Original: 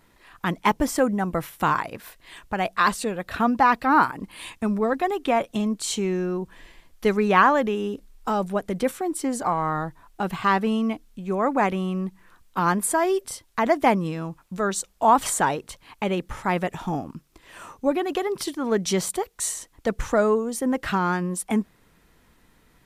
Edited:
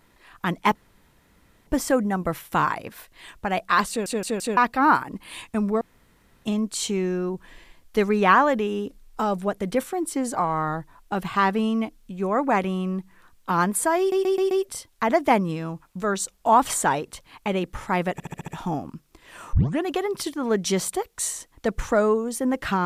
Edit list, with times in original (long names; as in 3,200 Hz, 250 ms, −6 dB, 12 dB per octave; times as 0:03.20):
0:00.75: splice in room tone 0.92 s
0:02.97: stutter in place 0.17 s, 4 plays
0:04.89–0:05.53: fill with room tone
0:13.07: stutter 0.13 s, 5 plays
0:16.69: stutter 0.07 s, 6 plays
0:17.74: tape start 0.29 s